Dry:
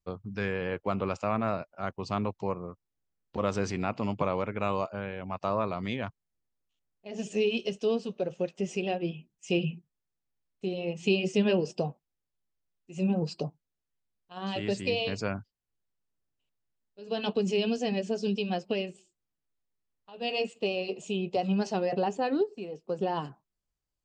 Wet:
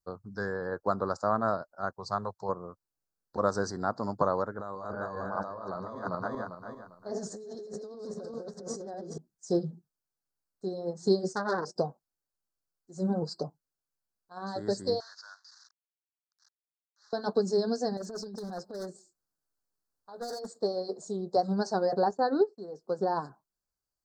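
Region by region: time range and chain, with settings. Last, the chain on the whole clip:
0:01.93–0:02.49: high-pass filter 56 Hz + parametric band 280 Hz −14 dB 0.62 octaves
0:04.56–0:09.18: feedback delay that plays each chunk backwards 199 ms, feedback 53%, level −2 dB + high-shelf EQ 6,000 Hz −6.5 dB + compressor whose output falls as the input rises −36 dBFS
0:11.33–0:11.76: noise gate −42 dBFS, range −12 dB + saturating transformer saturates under 1,800 Hz
0:15.00–0:17.13: linear delta modulator 32 kbit/s, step −44 dBFS + Bessel high-pass filter 1,700 Hz, order 6 + transient designer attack −12 dB, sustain −7 dB
0:17.97–0:20.57: compressor whose output falls as the input rises −32 dBFS, ratio −0.5 + gain into a clipping stage and back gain 30.5 dB
0:22.11–0:22.68: low-pass filter 6,200 Hz + downward expander −40 dBFS
whole clip: elliptic band-stop filter 1,600–4,300 Hz, stop band 60 dB; low-shelf EQ 350 Hz −9.5 dB; expander for the loud parts 1.5 to 1, over −38 dBFS; level +7.5 dB

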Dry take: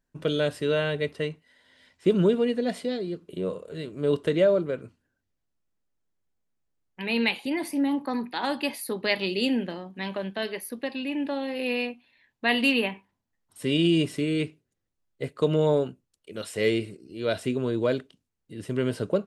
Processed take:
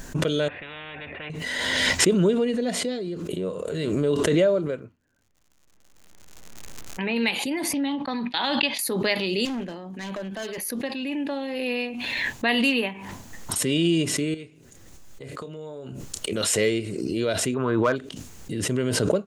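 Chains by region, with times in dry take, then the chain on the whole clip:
0:00.48–0:01.30: formant resonators in series e + every bin compressed towards the loudest bin 10 to 1
0:04.79–0:07.15: low-pass filter 2,500 Hz + surface crackle 150 per second −66 dBFS
0:07.73–0:08.79: noise gate −39 dBFS, range −29 dB + low-pass with resonance 3,600 Hz, resonance Q 3.1 + parametric band 380 Hz −6.5 dB 0.61 octaves
0:09.45–0:10.58: hard clipping −28 dBFS + multiband upward and downward expander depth 40%
0:14.34–0:16.33: downward compressor 3 to 1, threshold −40 dBFS + double-tracking delay 30 ms −12 dB
0:17.54–0:17.96: drawn EQ curve 560 Hz 0 dB, 1,200 Hz +14 dB, 6,000 Hz −15 dB + hard clipping −13.5 dBFS
whole clip: parametric band 6,700 Hz +8 dB 0.4 octaves; background raised ahead of every attack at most 23 dB per second

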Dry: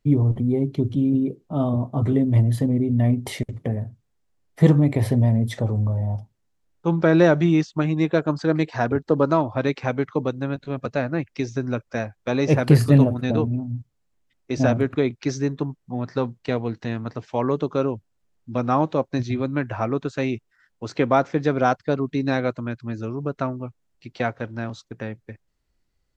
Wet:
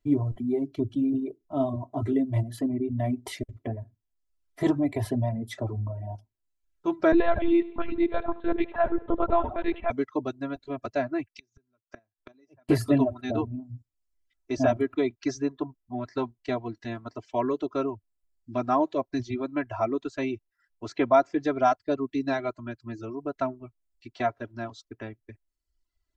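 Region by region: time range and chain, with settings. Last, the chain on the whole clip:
0:07.12–0:09.91: echo with shifted repeats 81 ms, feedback 44%, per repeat +33 Hz, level −8 dB + one-pitch LPC vocoder at 8 kHz 170 Hz
0:11.28–0:12.69: gate with flip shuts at −23 dBFS, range −30 dB + multiband upward and downward expander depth 70%
whole clip: comb filter 3 ms, depth 93%; dynamic equaliser 730 Hz, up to +4 dB, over −34 dBFS, Q 1.3; reverb reduction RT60 0.93 s; level −7.5 dB

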